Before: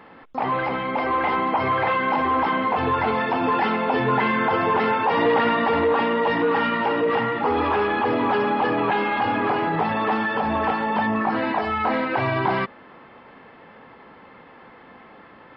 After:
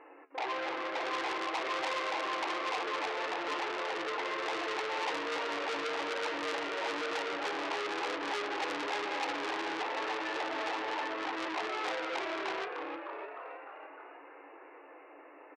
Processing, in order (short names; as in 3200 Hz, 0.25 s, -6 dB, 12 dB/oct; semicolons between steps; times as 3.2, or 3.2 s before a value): bell 1500 Hz -6.5 dB 1.5 oct; limiter -18.5 dBFS, peak gain reduction 7.5 dB; flange 1.1 Hz, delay 8.7 ms, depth 7.6 ms, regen +66%; frequency-shifting echo 0.304 s, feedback 62%, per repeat +100 Hz, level -8 dB; FFT band-pass 270–2900 Hz; core saturation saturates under 3600 Hz